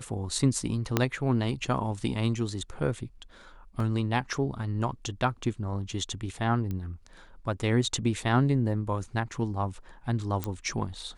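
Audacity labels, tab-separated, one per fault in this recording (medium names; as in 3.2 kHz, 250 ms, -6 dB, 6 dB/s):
0.970000	0.970000	pop -8 dBFS
3.800000	3.800000	dropout 2.9 ms
6.710000	6.710000	pop -22 dBFS
10.440000	10.440000	pop -15 dBFS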